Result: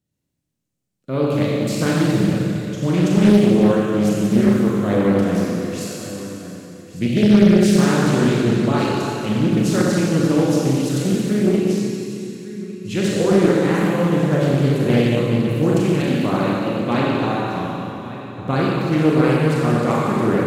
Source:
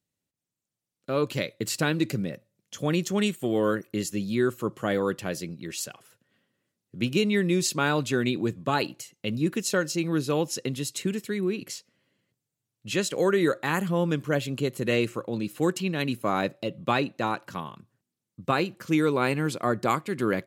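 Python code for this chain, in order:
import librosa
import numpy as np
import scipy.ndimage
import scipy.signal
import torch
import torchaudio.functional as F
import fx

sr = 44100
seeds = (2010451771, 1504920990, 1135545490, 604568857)

p1 = fx.low_shelf(x, sr, hz=380.0, db=11.5)
p2 = p1 + fx.echo_single(p1, sr, ms=1152, db=-15.0, dry=0)
p3 = fx.rev_schroeder(p2, sr, rt60_s=2.8, comb_ms=30, drr_db=-5.5)
p4 = fx.doppler_dist(p3, sr, depth_ms=0.57)
y = p4 * 10.0 ** (-3.0 / 20.0)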